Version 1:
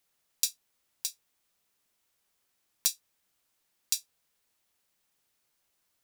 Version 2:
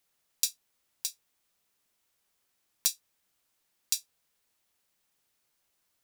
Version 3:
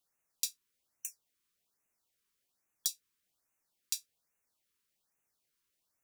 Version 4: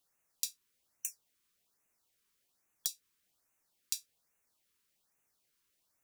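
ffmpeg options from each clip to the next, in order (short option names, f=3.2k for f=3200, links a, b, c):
-af anull
-af "afftfilt=real='re*(1-between(b*sr/1024,630*pow(4200/630,0.5+0.5*sin(2*PI*1.2*pts/sr))/1.41,630*pow(4200/630,0.5+0.5*sin(2*PI*1.2*pts/sr))*1.41))':imag='im*(1-between(b*sr/1024,630*pow(4200/630,0.5+0.5*sin(2*PI*1.2*pts/sr))/1.41,630*pow(4200/630,0.5+0.5*sin(2*PI*1.2*pts/sr))*1.41))':win_size=1024:overlap=0.75,volume=-6dB"
-af "acompressor=threshold=-34dB:ratio=6,volume=3.5dB"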